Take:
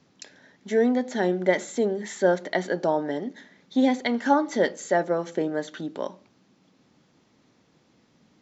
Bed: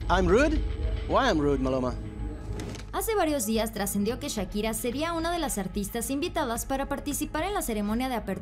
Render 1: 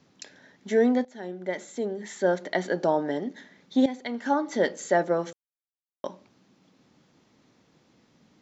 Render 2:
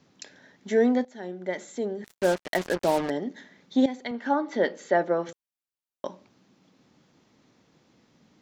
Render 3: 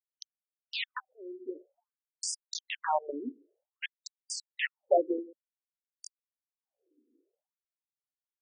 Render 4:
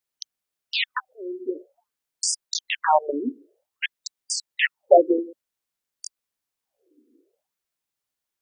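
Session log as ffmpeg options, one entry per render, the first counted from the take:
ffmpeg -i in.wav -filter_complex "[0:a]asplit=5[link_01][link_02][link_03][link_04][link_05];[link_01]atrim=end=1.05,asetpts=PTS-STARTPTS,afade=type=out:start_time=1.046:duration=0.004:curve=hsin:silence=0.11885[link_06];[link_02]atrim=start=1.05:end=3.86,asetpts=PTS-STARTPTS,afade=type=in:duration=1.79:silence=0.11885,afade=type=out:start_time=2.806:duration=0.004:curve=hsin:silence=0.237137[link_07];[link_03]atrim=start=3.86:end=5.33,asetpts=PTS-STARTPTS,afade=type=in:duration=0.97:silence=0.237137,afade=type=out:start_time=1.466:duration=0.004:curve=hsin[link_08];[link_04]atrim=start=5.33:end=6.04,asetpts=PTS-STARTPTS,volume=0[link_09];[link_05]atrim=start=6.04,asetpts=PTS-STARTPTS,afade=type=in:duration=0.004:curve=hsin[link_10];[link_06][link_07][link_08][link_09][link_10]concat=n=5:v=0:a=1" out.wav
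ffmpeg -i in.wav -filter_complex "[0:a]asettb=1/sr,asplit=3[link_01][link_02][link_03];[link_01]atrim=end=2.044[link_04];[link_02]atrim=start=2.04:end=3.1,asetpts=PTS-STARTPTS,afade=type=in:duration=0.004:curve=qsin,afade=type=out:start_time=1.056:duration=0.004:curve=qsin,acrusher=bits=4:mix=0:aa=0.5[link_05];[link_03]atrim=start=3.096[link_06];[link_04][link_05]acrossfade=duration=0.004:curve1=hsin:curve2=qsin[link_07];[link_07][link_06]acrossfade=duration=0.004:curve1=qsin:curve2=hsin,asettb=1/sr,asplit=3[link_08][link_09][link_10];[link_08]atrim=end=4.114[link_11];[link_09]atrim=start=4.11:end=5.29,asetpts=PTS-STARTPTS,afade=type=in:duration=0.004:curve=qsin,afade=type=out:start_time=1.176:duration=0.004:curve=qsin,highpass=170,lowpass=4000[link_12];[link_10]atrim=start=5.286[link_13];[link_11][link_12]acrossfade=duration=0.004:curve1=hsin:curve2=qsin[link_14];[link_14][link_13]acrossfade=duration=0.004:curve1=qsin:curve2=hsin" out.wav
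ffmpeg -i in.wav -filter_complex "[0:a]acrossover=split=390[link_01][link_02];[link_02]acrusher=bits=3:mix=0:aa=0.000001[link_03];[link_01][link_03]amix=inputs=2:normalize=0,afftfilt=real='re*between(b*sr/1024,340*pow(6900/340,0.5+0.5*sin(2*PI*0.53*pts/sr))/1.41,340*pow(6900/340,0.5+0.5*sin(2*PI*0.53*pts/sr))*1.41)':imag='im*between(b*sr/1024,340*pow(6900/340,0.5+0.5*sin(2*PI*0.53*pts/sr))/1.41,340*pow(6900/340,0.5+0.5*sin(2*PI*0.53*pts/sr))*1.41)':win_size=1024:overlap=0.75" out.wav
ffmpeg -i in.wav -af "volume=10.5dB" out.wav

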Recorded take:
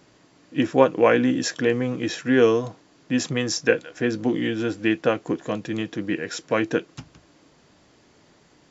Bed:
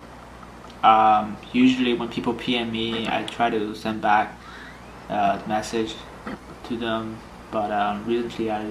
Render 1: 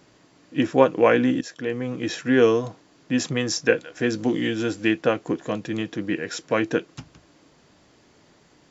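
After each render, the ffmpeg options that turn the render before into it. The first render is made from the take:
ffmpeg -i in.wav -filter_complex "[0:a]asettb=1/sr,asplit=3[link_01][link_02][link_03];[link_01]atrim=end=3.994[link_04];[link_02]atrim=start=3.99:end=4.91,asetpts=PTS-STARTPTS,afade=type=in:duration=0.004:curve=qsin,afade=type=out:start_time=0.916:duration=0.004:curve=qsin,highshelf=frequency=5700:gain=10.5[link_05];[link_03]atrim=start=4.906[link_06];[link_04][link_05]acrossfade=duration=0.004:curve1=hsin:curve2=qsin[link_07];[link_07][link_06]acrossfade=duration=0.004:curve1=qsin:curve2=hsin,asplit=2[link_08][link_09];[link_08]atrim=end=1.41,asetpts=PTS-STARTPTS,afade=type=out:start_time=1.406:duration=0.004:curve=hsin:silence=0.188365[link_10];[link_09]atrim=start=1.41,asetpts=PTS-STARTPTS,afade=type=in:duration=0.74:silence=0.188365[link_11];[link_10][link_11]concat=n=2:v=0:a=1" out.wav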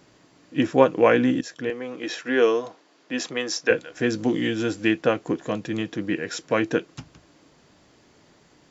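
ffmpeg -i in.wav -filter_complex "[0:a]asettb=1/sr,asplit=3[link_01][link_02][link_03];[link_01]atrim=end=1.704[link_04];[link_02]atrim=start=1.7:end=3.71,asetpts=PTS-STARTPTS,afade=type=in:duration=0.004:curve=qsin,afade=type=out:start_time=2.006:duration=0.004:curve=qsin,highpass=360,lowpass=6500[link_05];[link_03]atrim=start=3.706[link_06];[link_04][link_05]acrossfade=duration=0.004:curve1=hsin:curve2=qsin[link_07];[link_07][link_06]acrossfade=duration=0.004:curve1=qsin:curve2=hsin" out.wav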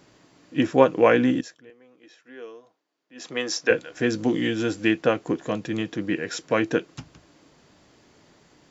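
ffmpeg -i in.wav -filter_complex "[0:a]asplit=3[link_01][link_02][link_03];[link_01]atrim=end=1.61,asetpts=PTS-STARTPTS,afade=type=out:start_time=1.37:duration=0.24:silence=0.0841395[link_04];[link_02]atrim=start=1.61:end=3.15,asetpts=PTS-STARTPTS,volume=-21.5dB[link_05];[link_03]atrim=start=3.15,asetpts=PTS-STARTPTS,afade=type=in:duration=0.24:silence=0.0841395[link_06];[link_04][link_05][link_06]concat=n=3:v=0:a=1" out.wav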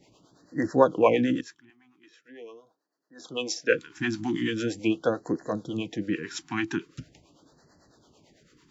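ffmpeg -i in.wav -filter_complex "[0:a]acrossover=split=410[link_01][link_02];[link_01]aeval=exprs='val(0)*(1-0.7/2+0.7/2*cos(2*PI*9*n/s))':channel_layout=same[link_03];[link_02]aeval=exprs='val(0)*(1-0.7/2-0.7/2*cos(2*PI*9*n/s))':channel_layout=same[link_04];[link_03][link_04]amix=inputs=2:normalize=0,afftfilt=real='re*(1-between(b*sr/1024,500*pow(2900/500,0.5+0.5*sin(2*PI*0.42*pts/sr))/1.41,500*pow(2900/500,0.5+0.5*sin(2*PI*0.42*pts/sr))*1.41))':imag='im*(1-between(b*sr/1024,500*pow(2900/500,0.5+0.5*sin(2*PI*0.42*pts/sr))/1.41,500*pow(2900/500,0.5+0.5*sin(2*PI*0.42*pts/sr))*1.41))':win_size=1024:overlap=0.75" out.wav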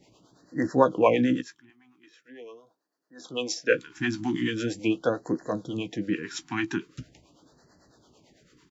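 ffmpeg -i in.wav -filter_complex "[0:a]asplit=2[link_01][link_02];[link_02]adelay=16,volume=-12dB[link_03];[link_01][link_03]amix=inputs=2:normalize=0" out.wav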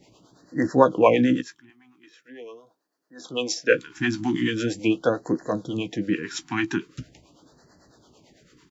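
ffmpeg -i in.wav -af "volume=3.5dB" out.wav

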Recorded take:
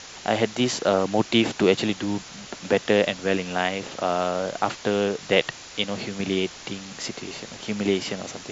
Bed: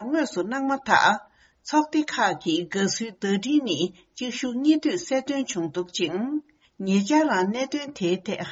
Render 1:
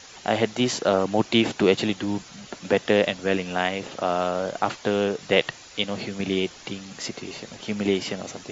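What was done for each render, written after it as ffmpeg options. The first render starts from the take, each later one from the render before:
ffmpeg -i in.wav -af "afftdn=noise_reduction=7:noise_floor=-42" out.wav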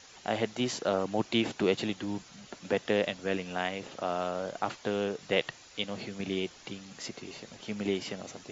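ffmpeg -i in.wav -af "volume=-8dB" out.wav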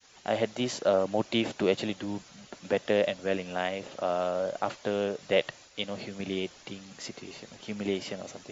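ffmpeg -i in.wav -af "agate=range=-33dB:threshold=-49dB:ratio=3:detection=peak,adynamicequalizer=threshold=0.00447:dfrequency=580:dqfactor=4.6:tfrequency=580:tqfactor=4.6:attack=5:release=100:ratio=0.375:range=4:mode=boostabove:tftype=bell" out.wav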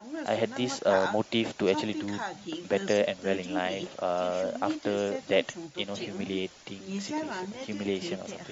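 ffmpeg -i in.wav -i bed.wav -filter_complex "[1:a]volume=-13.5dB[link_01];[0:a][link_01]amix=inputs=2:normalize=0" out.wav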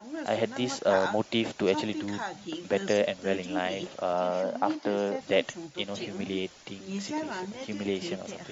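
ffmpeg -i in.wav -filter_complex "[0:a]asettb=1/sr,asplit=3[link_01][link_02][link_03];[link_01]atrim=end=4.134[link_04];[link_02]atrim=start=4.13:end=5.21,asetpts=PTS-STARTPTS,afade=type=in:duration=0.004:curve=qsin,afade=type=out:start_time=1.076:duration=0.004:curve=qsin,highpass=frequency=130:width=0.5412,highpass=frequency=130:width=1.3066,equalizer=frequency=180:width_type=q:width=4:gain=3,equalizer=frequency=870:width_type=q:width=4:gain=7,equalizer=frequency=2500:width_type=q:width=4:gain=-3,equalizer=frequency=3500:width_type=q:width=4:gain=-4,lowpass=frequency=6000:width=0.5412,lowpass=frequency=6000:width=1.3066[link_05];[link_03]atrim=start=5.206[link_06];[link_04][link_05]acrossfade=duration=0.004:curve1=hsin:curve2=qsin[link_07];[link_07][link_06]acrossfade=duration=0.004:curve1=qsin:curve2=hsin" out.wav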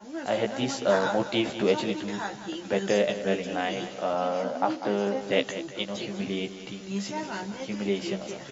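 ffmpeg -i in.wav -filter_complex "[0:a]asplit=2[link_01][link_02];[link_02]adelay=15,volume=-4dB[link_03];[link_01][link_03]amix=inputs=2:normalize=0,asplit=2[link_04][link_05];[link_05]aecho=0:1:197|394|591|788:0.251|0.103|0.0422|0.0173[link_06];[link_04][link_06]amix=inputs=2:normalize=0" out.wav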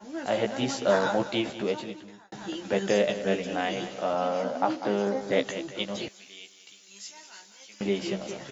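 ffmpeg -i in.wav -filter_complex "[0:a]asettb=1/sr,asplit=3[link_01][link_02][link_03];[link_01]atrim=end=5.024[link_04];[link_02]atrim=start=5.02:end=5.46,asetpts=PTS-STARTPTS,afade=type=in:duration=0.004:curve=qsin,afade=type=out:start_time=0.436:duration=0.004:curve=qsin,equalizer=frequency=2800:width_type=o:width=0.23:gain=-13[link_05];[link_03]atrim=start=5.456[link_06];[link_04][link_05]acrossfade=duration=0.004:curve1=hsin:curve2=qsin[link_07];[link_07][link_06]acrossfade=duration=0.004:curve1=qsin:curve2=hsin,asettb=1/sr,asplit=3[link_08][link_09][link_10];[link_08]atrim=end=6.084[link_11];[link_09]atrim=start=6.08:end=7.81,asetpts=PTS-STARTPTS,afade=type=in:duration=0.004:curve=qsin,afade=type=out:start_time=1.726:duration=0.004:curve=qsin,aderivative[link_12];[link_10]atrim=start=7.806[link_13];[link_11][link_12]acrossfade=duration=0.004:curve1=hsin:curve2=qsin[link_14];[link_14][link_13]acrossfade=duration=0.004:curve1=qsin:curve2=hsin,asplit=2[link_15][link_16];[link_15]atrim=end=2.32,asetpts=PTS-STARTPTS,afade=type=out:start_time=1.14:duration=1.18[link_17];[link_16]atrim=start=2.32,asetpts=PTS-STARTPTS,afade=type=in:duration=0.004:curve=hsin[link_18];[link_17][link_18]concat=n=2:v=0:a=1" out.wav

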